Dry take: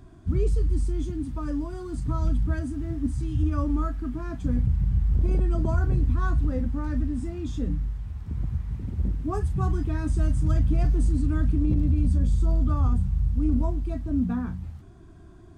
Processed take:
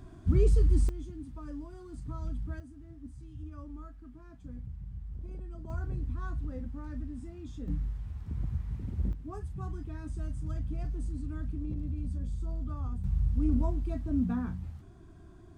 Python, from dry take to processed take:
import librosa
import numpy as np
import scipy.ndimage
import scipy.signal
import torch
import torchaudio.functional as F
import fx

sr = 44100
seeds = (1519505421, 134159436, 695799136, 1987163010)

y = fx.gain(x, sr, db=fx.steps((0.0, 0.0), (0.89, -12.0), (2.6, -19.0), (5.7, -12.0), (7.68, -5.0), (9.13, -13.0), (13.04, -4.0)))